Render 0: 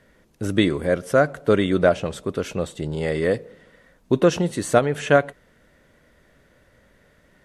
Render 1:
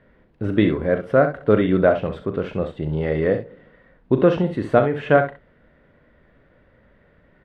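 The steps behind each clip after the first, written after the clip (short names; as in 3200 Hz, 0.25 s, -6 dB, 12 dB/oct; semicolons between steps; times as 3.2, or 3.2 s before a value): air absorption 430 m; early reflections 38 ms -11 dB, 65 ms -10 dB; gain +2 dB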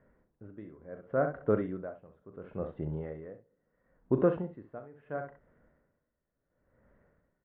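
Chebyshev low-pass 1300 Hz, order 2; dB-linear tremolo 0.72 Hz, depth 21 dB; gain -8.5 dB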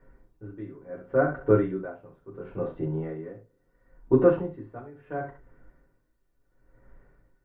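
reverb RT60 0.15 s, pre-delay 3 ms, DRR -3 dB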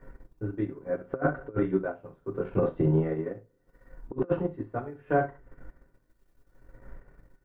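transient shaper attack +3 dB, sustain -8 dB; negative-ratio compressor -27 dBFS, ratio -0.5; gain +2 dB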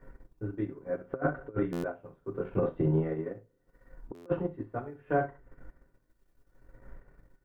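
stuck buffer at 1.72/4.14, samples 512, times 9; gain -3 dB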